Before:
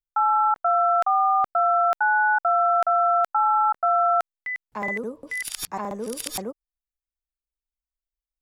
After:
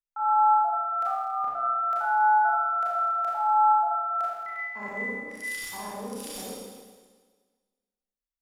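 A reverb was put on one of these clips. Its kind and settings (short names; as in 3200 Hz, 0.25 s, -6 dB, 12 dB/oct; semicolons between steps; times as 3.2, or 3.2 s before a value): Schroeder reverb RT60 1.5 s, combs from 27 ms, DRR -7 dB; gain -13.5 dB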